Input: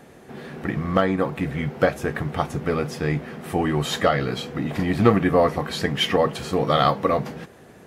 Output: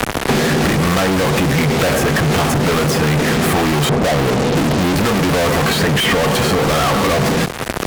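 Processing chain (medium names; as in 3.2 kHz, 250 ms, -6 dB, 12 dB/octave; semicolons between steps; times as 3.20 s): on a send at -17.5 dB: reverberation, pre-delay 77 ms; on the sum: crossover distortion -47 dBFS; 3.89–4.96 s: steep low-pass 780 Hz; fuzz box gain 45 dB, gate -51 dBFS; three bands compressed up and down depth 100%; trim -1 dB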